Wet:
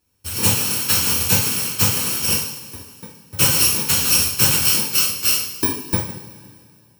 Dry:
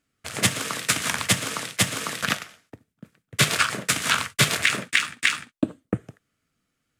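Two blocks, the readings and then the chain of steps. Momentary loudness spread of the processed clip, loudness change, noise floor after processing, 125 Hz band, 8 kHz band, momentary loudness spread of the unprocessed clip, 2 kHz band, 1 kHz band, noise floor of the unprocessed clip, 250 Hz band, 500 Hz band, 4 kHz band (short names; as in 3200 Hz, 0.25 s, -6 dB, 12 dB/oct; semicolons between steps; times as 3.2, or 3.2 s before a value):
14 LU, +7.5 dB, -54 dBFS, +5.0 dB, +8.5 dB, 11 LU, -3.5 dB, -0.5 dB, -79 dBFS, +2.5 dB, +2.5 dB, +4.5 dB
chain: FFT order left unsorted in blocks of 64 samples; soft clip -15 dBFS, distortion -11 dB; two-slope reverb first 0.48 s, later 2.4 s, from -17 dB, DRR -7 dB; gain +1 dB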